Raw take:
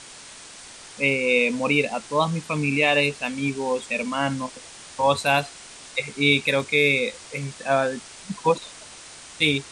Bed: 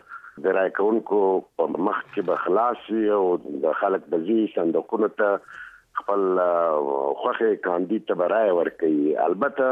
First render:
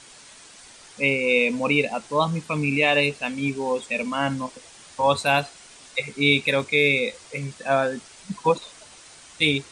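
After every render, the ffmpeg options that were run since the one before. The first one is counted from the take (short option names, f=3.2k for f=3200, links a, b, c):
-af "afftdn=nr=6:nf=-43"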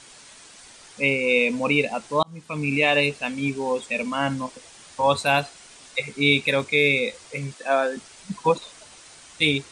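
-filter_complex "[0:a]asettb=1/sr,asplit=3[a][b][c];[a]atrim=end=7.544[d];[b]atrim=start=7.54:end=7.97,asetpts=PTS-STARTPTS,afade=t=in:d=0.004:c=qsin,afade=t=out:st=0.426:d=0.004:c=qsin,highpass=f=260:w=0.5412,highpass=f=260:w=1.3066[e];[c]atrim=start=7.966[f];[d][e]acrossfade=d=0.004:c1=hsin:c2=qsin[g];[g][f]acrossfade=d=0.004:c1=qsin:c2=hsin,asplit=2[h][i];[h]atrim=end=2.23,asetpts=PTS-STARTPTS,afade=t=out:st=2.226:d=0.004:c=hsin[j];[i]atrim=start=2.23,asetpts=PTS-STARTPTS,afade=t=in:d=0.51[k];[j][k]concat=n=2:v=0:a=1"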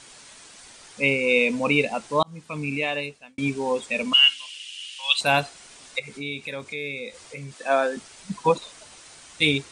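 -filter_complex "[0:a]asettb=1/sr,asplit=3[a][b][c];[a]atrim=end=4.134[d];[b]atrim=start=4.13:end=5.21,asetpts=PTS-STARTPTS,afade=t=in:d=0.004:c=qsin,afade=t=out:st=1.076:d=0.004:c=qsin,highpass=f=2.9k:t=q:w=14[e];[c]atrim=start=5.206[f];[d][e]acrossfade=d=0.004:c1=hsin:c2=qsin[g];[g][f]acrossfade=d=0.004:c1=qsin:c2=hsin,asplit=3[h][i][j];[h]afade=t=out:st=5.98:d=0.02[k];[i]acompressor=threshold=-38dB:ratio=2:attack=3.2:release=140:knee=1:detection=peak,afade=t=in:st=5.98:d=0.02,afade=t=out:st=7.58:d=0.02[l];[j]afade=t=in:st=7.58:d=0.02[m];[k][l][m]amix=inputs=3:normalize=0,asplit=2[n][o];[n]atrim=end=3.38,asetpts=PTS-STARTPTS,afade=t=out:st=2.28:d=1.1[p];[o]atrim=start=3.38,asetpts=PTS-STARTPTS,afade=t=in:d=0.004:c=hsin[q];[p][q]concat=n=2:v=0:a=1"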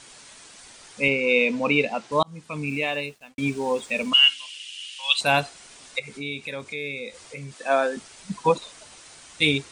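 -filter_complex "[0:a]asettb=1/sr,asplit=3[a][b][c];[a]atrim=end=1.084[d];[b]atrim=start=1.08:end=2.12,asetpts=PTS-STARTPTS,afade=t=in:d=0.004:c=qsin,afade=t=out:st=1.036:d=0.004:c=qsin,highpass=130,lowpass=5.7k[e];[c]atrim=start=2.116[f];[d][e]acrossfade=d=0.004:c1=hsin:c2=qsin[g];[g][f]acrossfade=d=0.004:c1=qsin:c2=hsin,asettb=1/sr,asplit=3[h][i][j];[h]atrim=end=2.674[k];[i]atrim=start=2.67:end=4.1,asetpts=PTS-STARTPTS,afade=t=in:d=0.004:c=qsin,afade=t=out:st=1.426:d=0.004:c=qsin,acrusher=bits=8:mix=0:aa=0.5[l];[j]atrim=start=4.096[m];[k][l]acrossfade=d=0.004:c1=hsin:c2=qsin[n];[n][m]acrossfade=d=0.004:c1=qsin:c2=hsin"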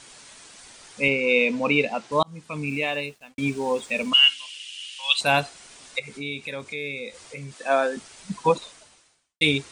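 -filter_complex "[0:a]asplit=2[a][b];[a]atrim=end=9.41,asetpts=PTS-STARTPTS,afade=t=out:st=8.63:d=0.78:c=qua[c];[b]atrim=start=9.41,asetpts=PTS-STARTPTS,afade=t=in:d=0.004:c=hsin[d];[c][d]concat=n=2:v=0:a=1"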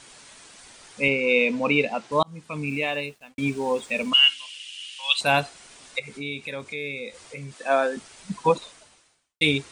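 -af "equalizer=f=6.1k:t=o:w=1.5:g=-2"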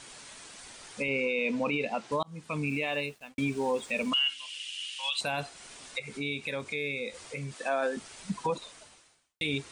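-af "acompressor=threshold=-31dB:ratio=1.5,alimiter=limit=-20dB:level=0:latency=1:release=24"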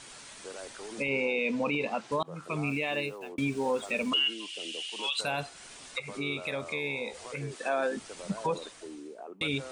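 -filter_complex "[1:a]volume=-23dB[a];[0:a][a]amix=inputs=2:normalize=0"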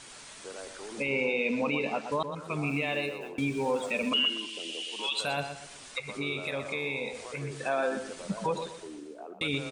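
-filter_complex "[0:a]asplit=2[a][b];[b]adelay=121,lowpass=f=4.3k:p=1,volume=-8.5dB,asplit=2[c][d];[d]adelay=121,lowpass=f=4.3k:p=1,volume=0.34,asplit=2[e][f];[f]adelay=121,lowpass=f=4.3k:p=1,volume=0.34,asplit=2[g][h];[h]adelay=121,lowpass=f=4.3k:p=1,volume=0.34[i];[a][c][e][g][i]amix=inputs=5:normalize=0"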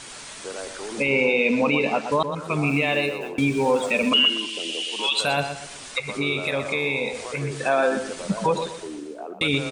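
-af "volume=8.5dB"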